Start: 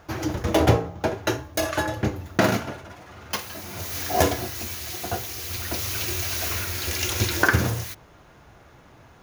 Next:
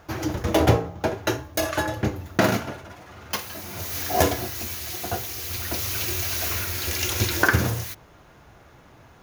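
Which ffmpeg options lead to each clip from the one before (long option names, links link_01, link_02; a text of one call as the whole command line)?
ffmpeg -i in.wav -af "equalizer=frequency=15000:width=1.3:gain=4" out.wav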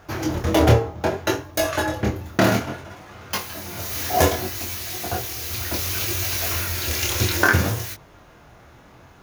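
ffmpeg -i in.wav -af "flanger=delay=20:depth=6.3:speed=0.64,volume=5.5dB" out.wav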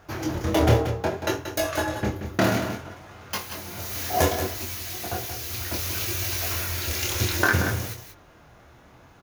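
ffmpeg -i in.wav -af "aecho=1:1:181:0.355,volume=-4dB" out.wav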